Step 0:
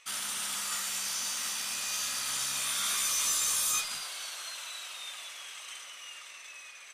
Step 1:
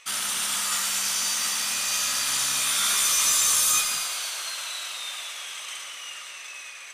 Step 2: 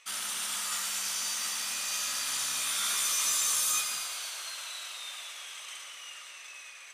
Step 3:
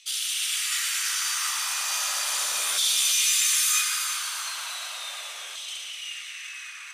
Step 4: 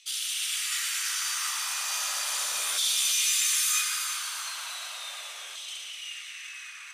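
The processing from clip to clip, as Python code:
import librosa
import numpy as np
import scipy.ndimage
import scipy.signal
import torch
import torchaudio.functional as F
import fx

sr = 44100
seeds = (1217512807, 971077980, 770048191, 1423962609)

y1 = fx.echo_thinned(x, sr, ms=117, feedback_pct=69, hz=420.0, wet_db=-9.0)
y1 = F.gain(torch.from_numpy(y1), 7.0).numpy()
y2 = fx.low_shelf(y1, sr, hz=120.0, db=-9.0)
y2 = F.gain(torch.from_numpy(y2), -7.0).numpy()
y3 = fx.filter_lfo_highpass(y2, sr, shape='saw_down', hz=0.36, low_hz=410.0, high_hz=3700.0, q=1.9)
y3 = fx.echo_feedback(y3, sr, ms=346, feedback_pct=43, wet_db=-10.0)
y3 = F.gain(torch.from_numpy(y3), 4.5).numpy()
y4 = fx.low_shelf(y3, sr, hz=190.0, db=-3.5)
y4 = F.gain(torch.from_numpy(y4), -3.0).numpy()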